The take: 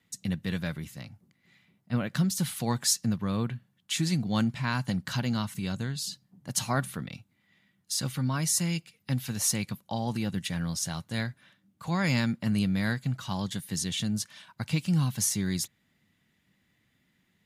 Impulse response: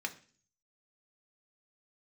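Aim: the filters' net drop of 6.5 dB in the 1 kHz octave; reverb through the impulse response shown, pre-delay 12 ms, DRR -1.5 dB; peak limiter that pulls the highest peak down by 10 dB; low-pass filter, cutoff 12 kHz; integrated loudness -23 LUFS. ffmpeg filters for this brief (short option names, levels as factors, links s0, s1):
-filter_complex "[0:a]lowpass=12000,equalizer=f=1000:t=o:g=-8.5,alimiter=limit=0.0708:level=0:latency=1,asplit=2[s0][s1];[1:a]atrim=start_sample=2205,adelay=12[s2];[s1][s2]afir=irnorm=-1:irlink=0,volume=0.944[s3];[s0][s3]amix=inputs=2:normalize=0,volume=2.51"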